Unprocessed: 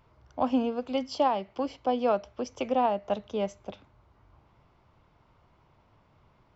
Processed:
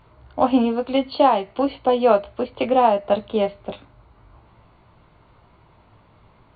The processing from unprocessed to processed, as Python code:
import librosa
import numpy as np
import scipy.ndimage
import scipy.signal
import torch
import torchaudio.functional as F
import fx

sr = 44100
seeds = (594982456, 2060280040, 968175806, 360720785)

y = fx.brickwall_lowpass(x, sr, high_hz=4600.0)
y = fx.doubler(y, sr, ms=18.0, db=-6)
y = F.gain(torch.from_numpy(y), 8.5).numpy()